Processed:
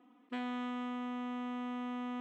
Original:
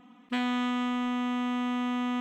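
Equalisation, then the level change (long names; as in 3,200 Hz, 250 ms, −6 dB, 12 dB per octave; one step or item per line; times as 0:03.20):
four-pole ladder high-pass 270 Hz, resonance 45%
high-shelf EQ 3,100 Hz −8.5 dB
0.0 dB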